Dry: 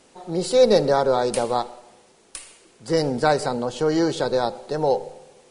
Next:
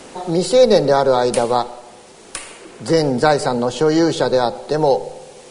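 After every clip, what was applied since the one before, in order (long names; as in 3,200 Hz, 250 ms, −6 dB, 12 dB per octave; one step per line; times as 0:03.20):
multiband upward and downward compressor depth 40%
level +5.5 dB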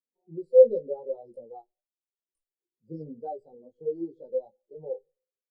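parametric band 1,600 Hz −11.5 dB 1.9 octaves
chorus effect 1.5 Hz, delay 17 ms, depth 2.4 ms
every bin expanded away from the loudest bin 2.5 to 1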